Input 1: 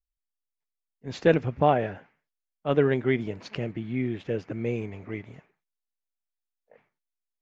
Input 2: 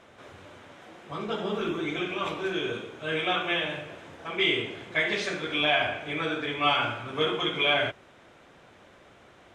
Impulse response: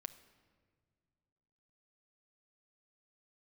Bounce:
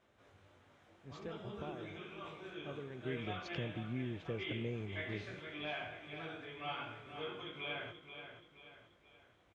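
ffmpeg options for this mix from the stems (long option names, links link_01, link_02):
-filter_complex "[0:a]acompressor=threshold=-28dB:ratio=3,volume=-10dB,afade=type=in:start_time=2.94:duration=0.21:silence=0.375837[link_01];[1:a]flanger=delay=18.5:depth=2.4:speed=0.48,acrossover=split=3900[link_02][link_03];[link_03]acompressor=threshold=-53dB:ratio=4:attack=1:release=60[link_04];[link_02][link_04]amix=inputs=2:normalize=0,volume=-15dB,asplit=2[link_05][link_06];[link_06]volume=-9dB,aecho=0:1:480|960|1440|1920|2400|2880:1|0.43|0.185|0.0795|0.0342|0.0147[link_07];[link_01][link_05][link_07]amix=inputs=3:normalize=0,equalizer=frequency=65:width=0.82:gain=8.5"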